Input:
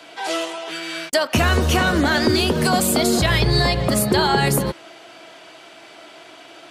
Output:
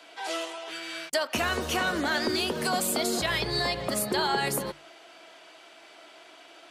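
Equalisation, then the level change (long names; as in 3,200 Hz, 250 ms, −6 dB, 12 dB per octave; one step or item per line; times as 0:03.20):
parametric band 81 Hz −13 dB 2.6 octaves
mains-hum notches 50/100/150 Hz
−7.5 dB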